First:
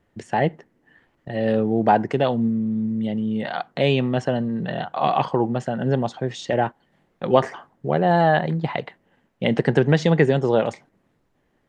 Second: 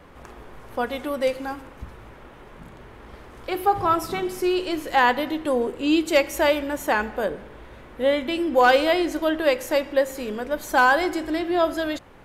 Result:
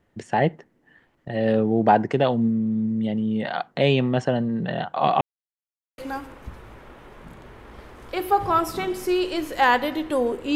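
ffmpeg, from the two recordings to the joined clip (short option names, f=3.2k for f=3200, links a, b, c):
-filter_complex "[0:a]apad=whole_dur=10.55,atrim=end=10.55,asplit=2[a][b];[a]atrim=end=5.21,asetpts=PTS-STARTPTS,afade=t=out:st=5.206:d=0.004:c=hsin[c];[b]atrim=start=5.21:end=5.98,asetpts=PTS-STARTPTS,volume=0[d];[1:a]atrim=start=1.33:end=5.9,asetpts=PTS-STARTPTS,afade=t=in:d=0.004:c=hsin[e];[c][d][e]concat=n=3:v=0:a=1"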